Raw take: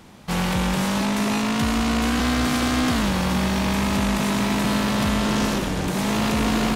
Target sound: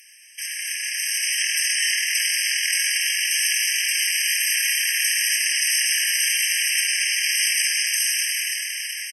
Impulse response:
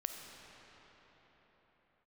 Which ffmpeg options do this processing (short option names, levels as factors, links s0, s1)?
-filter_complex "[0:a]aemphasis=mode=production:type=riaa,acrossover=split=570[s0][s1];[s1]acontrast=22[s2];[s0][s2]amix=inputs=2:normalize=0,asetrate=32667,aresample=44100,alimiter=limit=0.266:level=0:latency=1,dynaudnorm=f=200:g=11:m=3.76,asplit=2[s3][s4];[s4]aecho=0:1:107.9|233.2:0.251|0.316[s5];[s3][s5]amix=inputs=2:normalize=0,afftfilt=real='re*eq(mod(floor(b*sr/1024/1600),2),1)':imag='im*eq(mod(floor(b*sr/1024/1600),2),1)':win_size=1024:overlap=0.75,volume=0.562"